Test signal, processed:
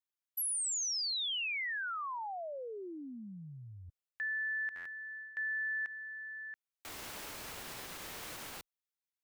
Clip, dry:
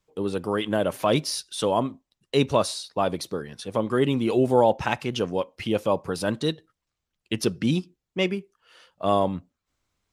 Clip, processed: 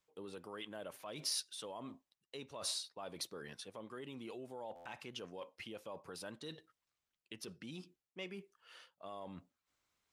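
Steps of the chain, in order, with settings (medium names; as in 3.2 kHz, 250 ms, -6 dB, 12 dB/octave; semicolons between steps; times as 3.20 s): treble shelf 3.7 kHz -11 dB; reverse; compression 6:1, threshold -34 dBFS; reverse; peak limiter -30.5 dBFS; tilt EQ +3 dB/octave; buffer glitch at 4.75 s, samples 512, times 8; trim -4 dB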